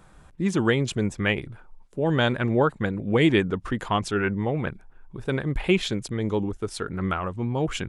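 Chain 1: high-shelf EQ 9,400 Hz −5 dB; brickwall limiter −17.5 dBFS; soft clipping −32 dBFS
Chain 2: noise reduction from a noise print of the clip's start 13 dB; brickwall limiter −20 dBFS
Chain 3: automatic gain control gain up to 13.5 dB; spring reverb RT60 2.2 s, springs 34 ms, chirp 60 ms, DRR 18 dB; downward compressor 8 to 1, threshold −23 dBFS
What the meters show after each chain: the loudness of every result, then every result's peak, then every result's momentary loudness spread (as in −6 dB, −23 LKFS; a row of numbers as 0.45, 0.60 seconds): −36.0, −31.0, −28.0 LKFS; −32.0, −20.0, −12.5 dBFS; 6, 6, 5 LU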